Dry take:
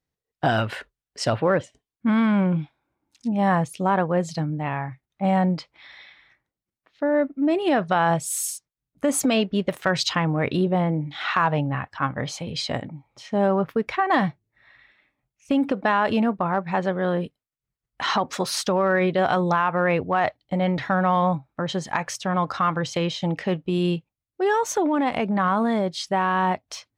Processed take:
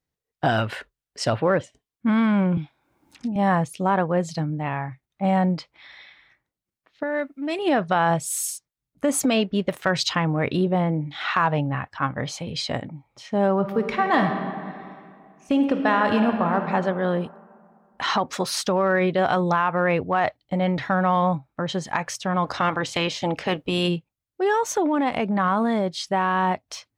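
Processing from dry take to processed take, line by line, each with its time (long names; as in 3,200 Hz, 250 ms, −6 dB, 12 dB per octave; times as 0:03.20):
0:02.57–0:03.36: multiband upward and downward compressor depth 100%
0:07.03–0:07.59: tilt shelving filter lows −8.5 dB, about 1,300 Hz
0:13.55–0:16.65: thrown reverb, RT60 2.3 s, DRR 5 dB
0:22.44–0:23.87: ceiling on every frequency bin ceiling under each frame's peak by 14 dB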